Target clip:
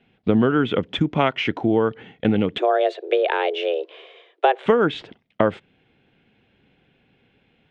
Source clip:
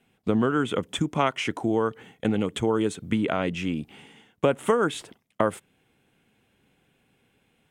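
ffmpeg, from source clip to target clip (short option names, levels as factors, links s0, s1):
-filter_complex "[0:a]asettb=1/sr,asplit=3[s0][s1][s2];[s0]atrim=end=2.584[s3];[s1]atrim=start=2.58:end=4.66,asetpts=PTS-STARTPTS,afade=t=in:d=0.004:c=qsin,afade=t=out:st=2.076:d=0.004:c=qsin,afreqshift=250[s4];[s2]atrim=start=4.656[s5];[s3][s4]acrossfade=d=0.004:c1=hsin:c2=qsin[s6];[s6][s5]acrossfade=d=0.004:c1=qsin:c2=hsin,lowpass=f=4000:w=0.5412,lowpass=f=4000:w=1.3066,equalizer=f=1100:w=2.4:g=-5,volume=1.88"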